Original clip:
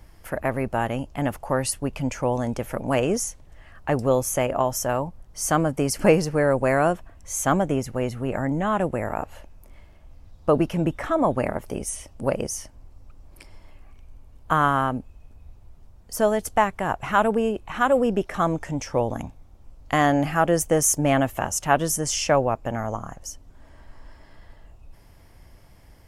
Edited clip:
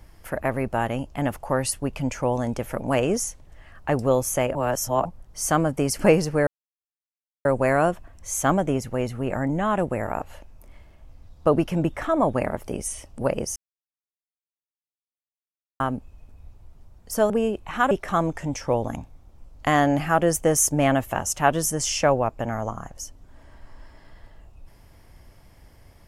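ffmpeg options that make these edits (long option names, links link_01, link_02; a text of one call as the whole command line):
ffmpeg -i in.wav -filter_complex "[0:a]asplit=8[link_01][link_02][link_03][link_04][link_05][link_06][link_07][link_08];[link_01]atrim=end=4.552[link_09];[link_02]atrim=start=4.548:end=5.052,asetpts=PTS-STARTPTS,areverse[link_10];[link_03]atrim=start=5.048:end=6.47,asetpts=PTS-STARTPTS,afade=type=out:start_time=1.418:duration=0.004:curve=hsin,apad=pad_dur=0.98[link_11];[link_04]atrim=start=6.47:end=12.58,asetpts=PTS-STARTPTS,afade=type=in:duration=0.004:curve=hsin,afade=type=out:start_time=6.106:duration=0.004:curve=hsin[link_12];[link_05]atrim=start=12.58:end=14.82,asetpts=PTS-STARTPTS,volume=0[link_13];[link_06]atrim=start=14.82:end=16.322,asetpts=PTS-STARTPTS,afade=type=in:duration=0.004:curve=hsin[link_14];[link_07]atrim=start=17.308:end=17.922[link_15];[link_08]atrim=start=18.168[link_16];[link_09][link_10]acrossfade=duration=0.004:curve1=hsin:curve2=hsin[link_17];[link_11][link_12][link_13][link_14]concat=n=4:v=0:a=1[link_18];[link_17][link_18]acrossfade=duration=0.004:curve1=hsin:curve2=hsin[link_19];[link_19][link_15]acrossfade=duration=0.004:curve1=hsin:curve2=hsin[link_20];[link_20][link_16]acrossfade=duration=0.004:curve1=hsin:curve2=hsin" out.wav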